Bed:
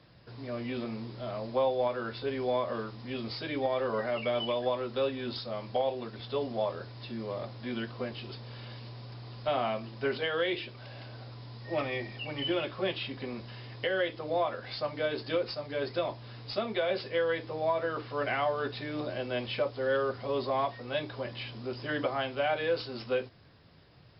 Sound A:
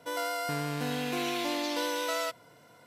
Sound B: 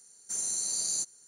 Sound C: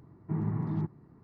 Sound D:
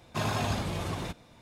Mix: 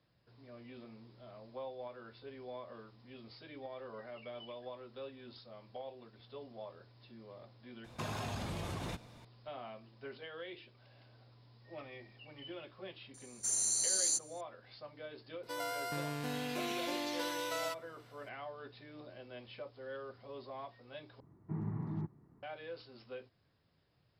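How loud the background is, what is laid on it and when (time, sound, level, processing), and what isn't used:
bed -16.5 dB
7.84 s: add D -2 dB + compression, threshold -34 dBFS
13.14 s: add B -1 dB + steep high-pass 200 Hz 96 dB/octave
15.43 s: add A -6.5 dB
21.20 s: replace with C -7.5 dB

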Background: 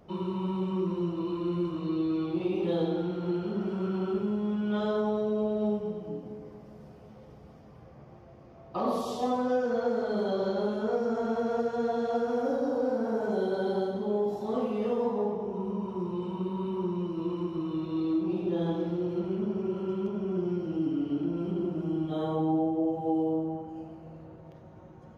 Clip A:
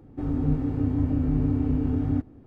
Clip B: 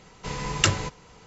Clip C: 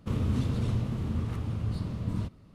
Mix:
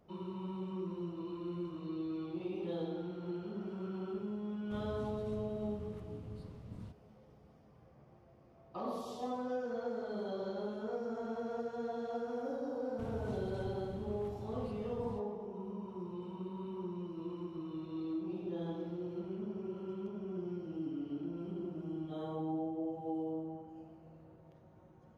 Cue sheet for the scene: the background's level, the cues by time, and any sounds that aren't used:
background -10.5 dB
4.64 s: add C -17 dB
12.92 s: add C -15 dB
not used: A, B

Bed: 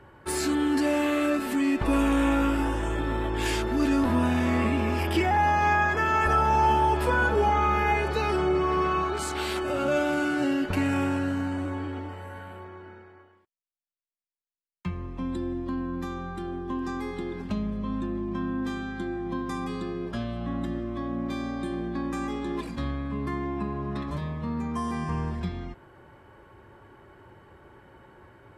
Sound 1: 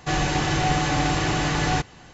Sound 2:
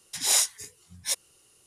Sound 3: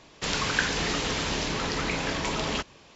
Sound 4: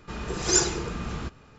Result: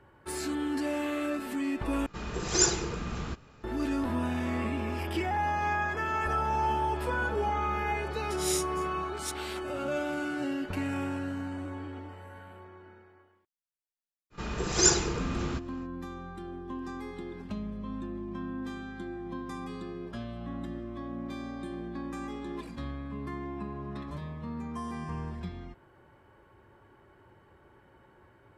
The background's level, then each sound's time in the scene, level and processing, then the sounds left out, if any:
bed -7 dB
2.06 s: replace with 4 -2.5 dB
8.17 s: add 2 -10.5 dB + steep high-pass 1.3 kHz
14.30 s: add 4 -0.5 dB, fades 0.05 s
not used: 1, 3

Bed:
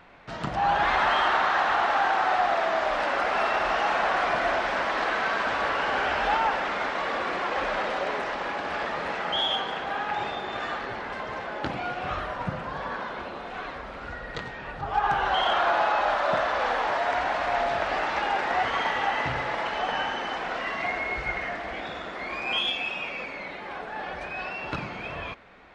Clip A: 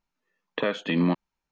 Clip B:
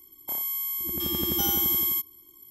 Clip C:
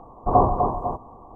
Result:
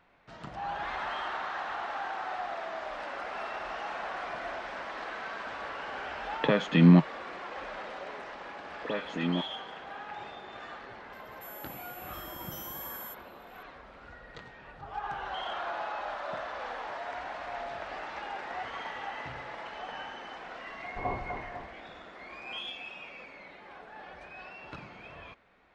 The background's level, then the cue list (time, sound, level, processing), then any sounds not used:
bed -12.5 dB
5.86 s: add A -0.5 dB + peaking EQ 150 Hz +13 dB 0.71 oct
8.27 s: add A -7.5 dB + phase dispersion highs, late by 93 ms, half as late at 2.7 kHz
11.13 s: add B -18 dB
20.70 s: add C -17 dB

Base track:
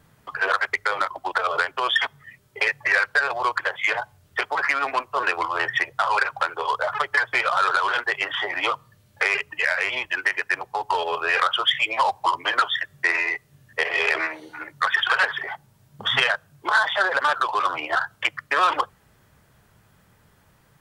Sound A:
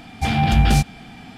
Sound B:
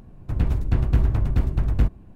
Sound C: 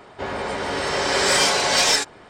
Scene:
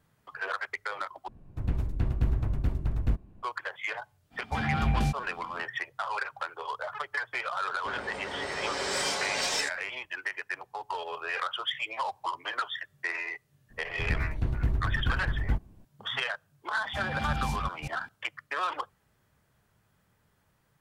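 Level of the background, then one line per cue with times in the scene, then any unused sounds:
base track -11.5 dB
1.28 s: replace with B -7.5 dB
4.30 s: add A -11 dB, fades 0.05 s + treble shelf 3.4 kHz -7 dB
7.65 s: add C -12 dB
13.70 s: add B -8.5 dB
16.72 s: add A -17 dB + chunks repeated in reverse 193 ms, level -3.5 dB

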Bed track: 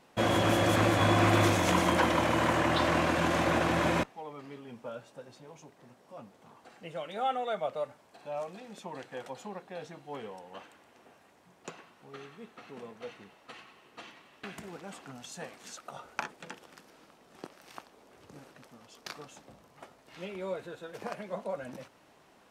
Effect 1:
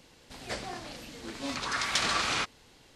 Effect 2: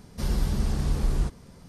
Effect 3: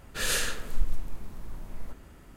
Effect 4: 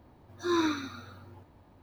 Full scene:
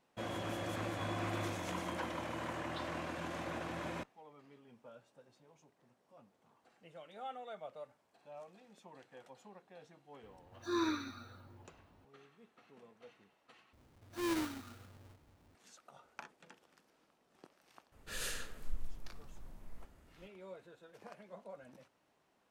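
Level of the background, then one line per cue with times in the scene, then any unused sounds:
bed track -14.5 dB
10.23 s: add 4 -7 dB
13.73 s: replace with 4 -13 dB + square wave that keeps the level
17.92 s: add 3 -13 dB
not used: 1, 2

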